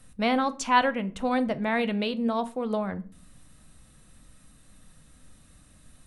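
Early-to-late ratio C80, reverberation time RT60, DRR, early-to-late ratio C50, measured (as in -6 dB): 24.5 dB, not exponential, 11.5 dB, 19.0 dB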